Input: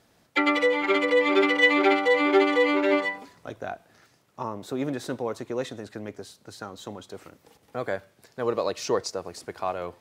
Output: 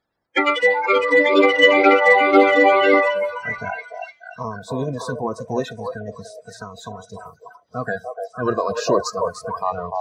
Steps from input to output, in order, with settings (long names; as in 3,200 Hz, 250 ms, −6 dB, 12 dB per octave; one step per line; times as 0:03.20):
spectral magnitudes quantised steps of 30 dB
high-shelf EQ 6,400 Hz −6 dB
echo through a band-pass that steps 296 ms, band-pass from 670 Hz, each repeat 0.7 octaves, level −0.5 dB
noise reduction from a noise print of the clip's start 21 dB
level +7 dB